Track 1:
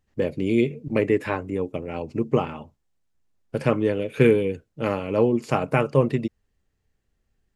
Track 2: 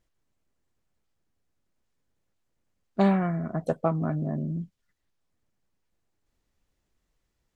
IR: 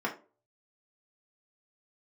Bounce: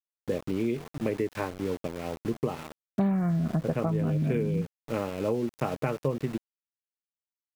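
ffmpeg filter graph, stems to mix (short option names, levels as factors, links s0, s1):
-filter_complex "[0:a]highshelf=f=2000:g=-7,adelay=100,volume=0.708[s0];[1:a]bass=f=250:g=10,treble=f=4000:g=-13,volume=1.12[s1];[s0][s1]amix=inputs=2:normalize=0,aeval=exprs='val(0)*gte(abs(val(0)),0.0158)':c=same,acompressor=threshold=0.0631:ratio=6"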